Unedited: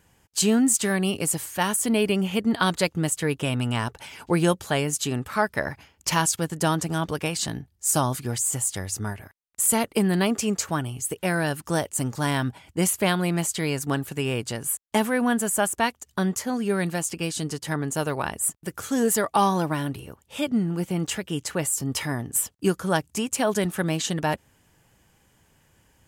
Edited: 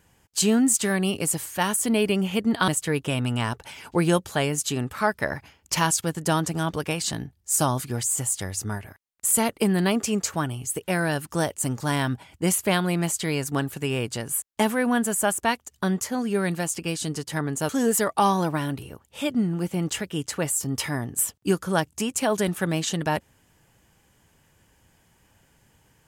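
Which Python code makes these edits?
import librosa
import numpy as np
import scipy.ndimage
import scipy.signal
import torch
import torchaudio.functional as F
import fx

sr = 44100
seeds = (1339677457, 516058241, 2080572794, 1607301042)

y = fx.edit(x, sr, fx.cut(start_s=2.68, length_s=0.35),
    fx.cut(start_s=18.04, length_s=0.82), tone=tone)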